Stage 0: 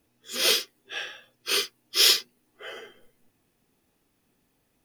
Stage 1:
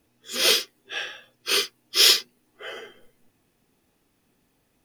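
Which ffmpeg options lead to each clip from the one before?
ffmpeg -i in.wav -af "highshelf=frequency=11000:gain=-3,volume=3dB" out.wav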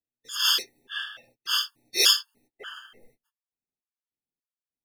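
ffmpeg -i in.wav -af "agate=range=-33dB:threshold=-57dB:ratio=16:detection=peak,afftfilt=real='re*gt(sin(2*PI*1.7*pts/sr)*(1-2*mod(floor(b*sr/1024/900),2)),0)':imag='im*gt(sin(2*PI*1.7*pts/sr)*(1-2*mod(floor(b*sr/1024/900),2)),0)':win_size=1024:overlap=0.75" out.wav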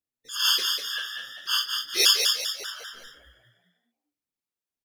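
ffmpeg -i in.wav -filter_complex "[0:a]asplit=6[link_01][link_02][link_03][link_04][link_05][link_06];[link_02]adelay=197,afreqshift=58,volume=-4.5dB[link_07];[link_03]adelay=394,afreqshift=116,volume=-11.6dB[link_08];[link_04]adelay=591,afreqshift=174,volume=-18.8dB[link_09];[link_05]adelay=788,afreqshift=232,volume=-25.9dB[link_10];[link_06]adelay=985,afreqshift=290,volume=-33dB[link_11];[link_01][link_07][link_08][link_09][link_10][link_11]amix=inputs=6:normalize=0" out.wav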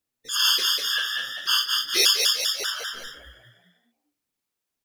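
ffmpeg -i in.wav -af "acompressor=threshold=-30dB:ratio=2,volume=8dB" out.wav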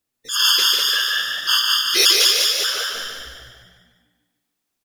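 ffmpeg -i in.wav -af "aecho=1:1:148|296|444|592|740|888:0.631|0.303|0.145|0.0698|0.0335|0.0161,volume=4dB" out.wav

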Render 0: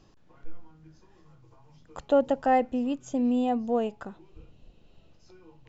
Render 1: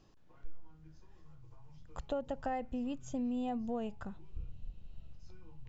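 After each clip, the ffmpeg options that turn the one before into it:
ffmpeg -i in.wav -af "asubboost=boost=7.5:cutoff=130,acompressor=threshold=-27dB:ratio=6,volume=-6dB" out.wav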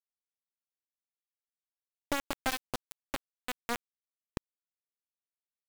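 ffmpeg -i in.wav -af "acrusher=bits=4:mix=0:aa=0.000001,volume=3.5dB" out.wav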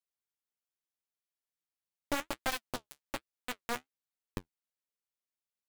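ffmpeg -i in.wav -af "flanger=delay=5.5:depth=8.8:regen=-42:speed=1.2:shape=sinusoidal,volume=2.5dB" out.wav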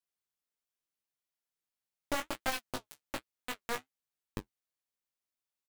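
ffmpeg -i in.wav -filter_complex "[0:a]asplit=2[link_01][link_02];[link_02]adelay=19,volume=-6dB[link_03];[link_01][link_03]amix=inputs=2:normalize=0,volume=-1dB" out.wav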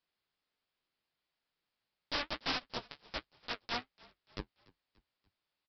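ffmpeg -i in.wav -filter_complex "[0:a]aresample=11025,aeval=exprs='(mod(53.1*val(0)+1,2)-1)/53.1':channel_layout=same,aresample=44100,asplit=4[link_01][link_02][link_03][link_04];[link_02]adelay=290,afreqshift=-44,volume=-23.5dB[link_05];[link_03]adelay=580,afreqshift=-88,volume=-29.7dB[link_06];[link_04]adelay=870,afreqshift=-132,volume=-35.9dB[link_07];[link_01][link_05][link_06][link_07]amix=inputs=4:normalize=0,volume=9dB" out.wav

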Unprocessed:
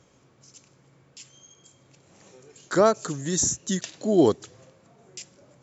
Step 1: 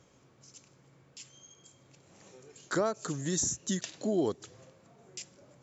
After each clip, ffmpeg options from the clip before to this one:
ffmpeg -i in.wav -af "acompressor=threshold=-25dB:ratio=3,volume=-3dB" out.wav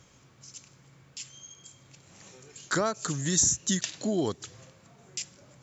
ffmpeg -i in.wav -af "equalizer=frequency=440:width_type=o:width=2.4:gain=-8.5,volume=8dB" out.wav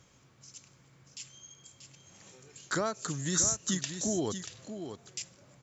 ffmpeg -i in.wav -af "aecho=1:1:635:0.355,volume=-4dB" out.wav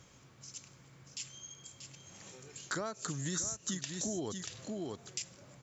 ffmpeg -i in.wav -af "acompressor=threshold=-38dB:ratio=4,volume=2.5dB" out.wav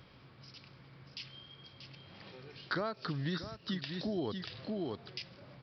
ffmpeg -i in.wav -af "aresample=11025,aresample=44100,volume=2.5dB" out.wav

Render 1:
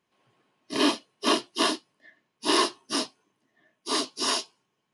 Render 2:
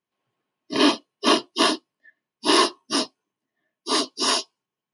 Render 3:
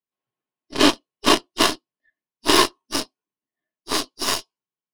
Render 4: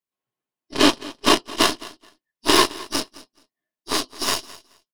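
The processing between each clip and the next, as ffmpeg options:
ffmpeg -i in.wav -af "afftdn=noise_reduction=16:noise_floor=-40,volume=5dB" out.wav
ffmpeg -i in.wav -af "aeval=exprs='0.668*(cos(1*acos(clip(val(0)/0.668,-1,1)))-cos(1*PI/2))+0.00841*(cos(5*acos(clip(val(0)/0.668,-1,1)))-cos(5*PI/2))+0.0841*(cos(7*acos(clip(val(0)/0.668,-1,1)))-cos(7*PI/2))+0.0376*(cos(8*acos(clip(val(0)/0.668,-1,1)))-cos(8*PI/2))':channel_layout=same,volume=3dB" out.wav
ffmpeg -i in.wav -af "aecho=1:1:214|428:0.106|0.0191" out.wav

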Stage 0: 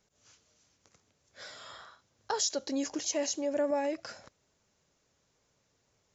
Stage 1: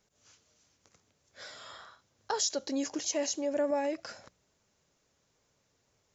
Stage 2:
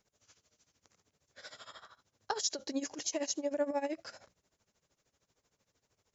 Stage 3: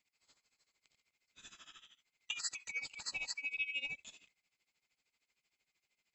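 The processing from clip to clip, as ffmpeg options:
ffmpeg -i in.wav -af "bandreject=frequency=60.15:width_type=h:width=4,bandreject=frequency=120.3:width_type=h:width=4,bandreject=frequency=180.45:width_type=h:width=4" out.wav
ffmpeg -i in.wav -af "tremolo=f=13:d=0.85" out.wav
ffmpeg -i in.wav -af "afftfilt=real='real(if(lt(b,920),b+92*(1-2*mod(floor(b/92),2)),b),0)':imag='imag(if(lt(b,920),b+92*(1-2*mod(floor(b/92),2)),b),0)':win_size=2048:overlap=0.75,volume=-6dB" out.wav

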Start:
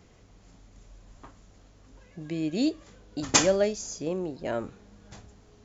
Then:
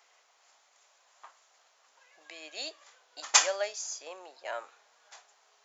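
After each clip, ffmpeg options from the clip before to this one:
ffmpeg -i in.wav -af "highpass=frequency=730:width=0.5412,highpass=frequency=730:width=1.3066" out.wav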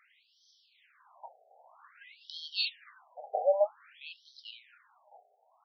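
ffmpeg -i in.wav -af "dynaudnorm=framelen=210:gausssize=13:maxgain=13dB,afftfilt=real='re*between(b*sr/1024,570*pow(4400/570,0.5+0.5*sin(2*PI*0.52*pts/sr))/1.41,570*pow(4400/570,0.5+0.5*sin(2*PI*0.52*pts/sr))*1.41)':imag='im*between(b*sr/1024,570*pow(4400/570,0.5+0.5*sin(2*PI*0.52*pts/sr))/1.41,570*pow(4400/570,0.5+0.5*sin(2*PI*0.52*pts/sr))*1.41)':win_size=1024:overlap=0.75,volume=3.5dB" out.wav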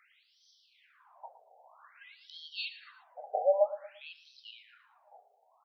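ffmpeg -i in.wav -filter_complex "[0:a]acrossover=split=3400[link_01][link_02];[link_02]acompressor=threshold=-57dB:ratio=4:attack=1:release=60[link_03];[link_01][link_03]amix=inputs=2:normalize=0,aecho=1:1:115|230|345:0.188|0.0659|0.0231" out.wav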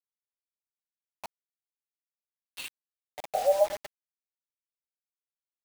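ffmpeg -i in.wav -af "highpass=530,lowpass=2100,acrusher=bits=6:mix=0:aa=0.000001,volume=4.5dB" out.wav

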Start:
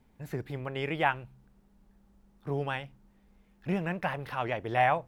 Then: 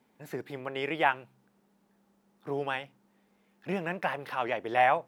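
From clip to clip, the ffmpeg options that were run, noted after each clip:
ffmpeg -i in.wav -af "highpass=250,volume=1.5dB" out.wav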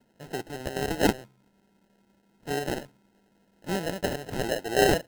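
ffmpeg -i in.wav -af "acrusher=samples=38:mix=1:aa=0.000001,volume=3dB" out.wav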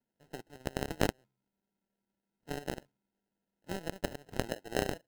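ffmpeg -i in.wav -af "acompressor=threshold=-25dB:ratio=8,aeval=exprs='0.168*(cos(1*acos(clip(val(0)/0.168,-1,1)))-cos(1*PI/2))+0.0531*(cos(3*acos(clip(val(0)/0.168,-1,1)))-cos(3*PI/2))+0.00106*(cos(6*acos(clip(val(0)/0.168,-1,1)))-cos(6*PI/2))':channel_layout=same,volume=4dB" out.wav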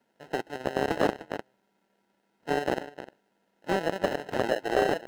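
ffmpeg -i in.wav -filter_complex "[0:a]asplit=2[link_01][link_02];[link_02]adelay=303.2,volume=-19dB,highshelf=frequency=4000:gain=-6.82[link_03];[link_01][link_03]amix=inputs=2:normalize=0,asplit=2[link_04][link_05];[link_05]highpass=frequency=720:poles=1,volume=27dB,asoftclip=type=tanh:threshold=-9dB[link_06];[link_04][link_06]amix=inputs=2:normalize=0,lowpass=frequency=1700:poles=1,volume=-6dB,volume=1dB" out.wav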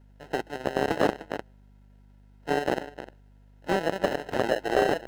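ffmpeg -i in.wav -af "aeval=exprs='val(0)+0.00178*(sin(2*PI*50*n/s)+sin(2*PI*2*50*n/s)/2+sin(2*PI*3*50*n/s)/3+sin(2*PI*4*50*n/s)/4+sin(2*PI*5*50*n/s)/5)':channel_layout=same,volume=1.5dB" out.wav

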